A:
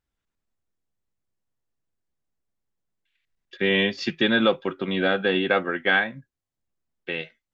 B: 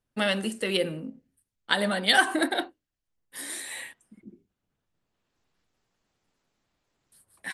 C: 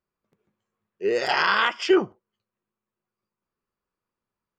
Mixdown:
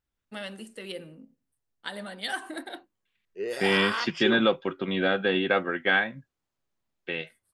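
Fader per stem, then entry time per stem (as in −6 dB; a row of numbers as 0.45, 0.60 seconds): −2.5, −12.0, −9.0 decibels; 0.00, 0.15, 2.35 seconds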